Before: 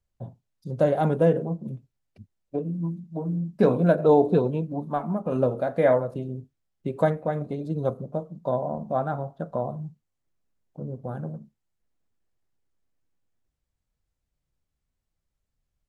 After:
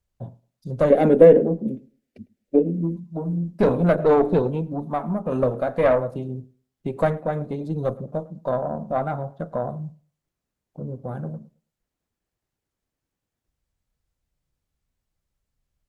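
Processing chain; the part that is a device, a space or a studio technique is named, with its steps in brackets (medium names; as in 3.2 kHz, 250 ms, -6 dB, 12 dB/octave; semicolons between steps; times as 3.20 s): rockabilly slapback (valve stage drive 13 dB, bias 0.5; tape echo 107 ms, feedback 23%, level -21 dB, low-pass 1.9 kHz); 0.90–2.97 s: graphic EQ 125/250/500/1000/2000 Hz -10/+12/+9/-9/+6 dB; trim +4.5 dB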